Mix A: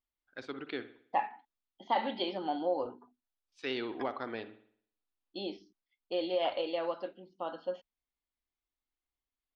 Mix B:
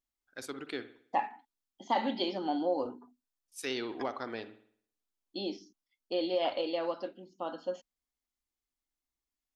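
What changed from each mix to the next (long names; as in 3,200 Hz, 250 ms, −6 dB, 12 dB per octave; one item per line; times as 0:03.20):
second voice: add parametric band 260 Hz +6.5 dB 0.68 octaves
master: remove low-pass filter 4,000 Hz 24 dB per octave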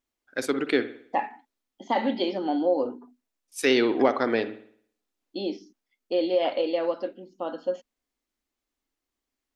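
first voice +8.5 dB
master: add octave-band graphic EQ 250/500/2,000 Hz +6/+7/+6 dB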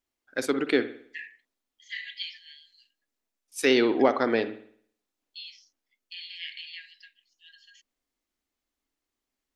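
second voice: add linear-phase brick-wall high-pass 1,600 Hz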